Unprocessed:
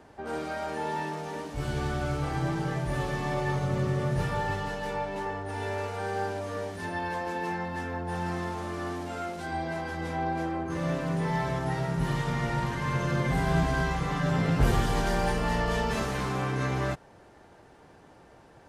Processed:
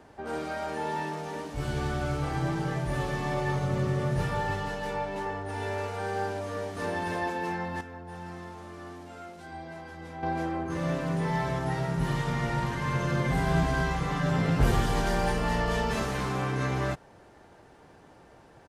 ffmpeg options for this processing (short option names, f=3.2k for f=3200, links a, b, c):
-filter_complex "[0:a]asplit=2[a][b];[b]afade=t=in:st=6.49:d=0.01,afade=t=out:st=7.02:d=0.01,aecho=0:1:270|540|810:0.891251|0.133688|0.0200531[c];[a][c]amix=inputs=2:normalize=0,asplit=3[d][e][f];[d]atrim=end=7.812[g];[e]atrim=start=7.808:end=10.232,asetpts=PTS-STARTPTS,volume=-9dB[h];[f]atrim=start=10.228[i];[g][h]acrossfade=d=0.004:c1=hsin:c2=hsin[j];[j][i]acrossfade=d=0.004:c1=hsin:c2=hsin"